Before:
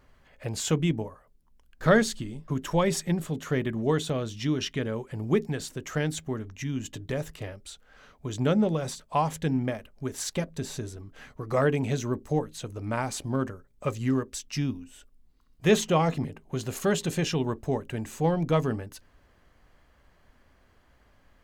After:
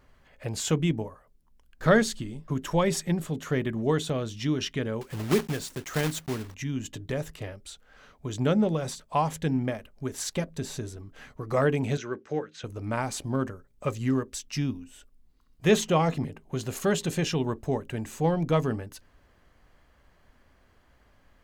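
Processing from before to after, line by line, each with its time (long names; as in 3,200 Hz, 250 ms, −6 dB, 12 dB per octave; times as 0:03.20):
0:05.01–0:06.56: one scale factor per block 3 bits
0:11.97–0:12.64: loudspeaker in its box 240–5,600 Hz, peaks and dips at 250 Hz −8 dB, 660 Hz −6 dB, 950 Hz −7 dB, 1,500 Hz +9 dB, 2,300 Hz +3 dB, 4,300 Hz −5 dB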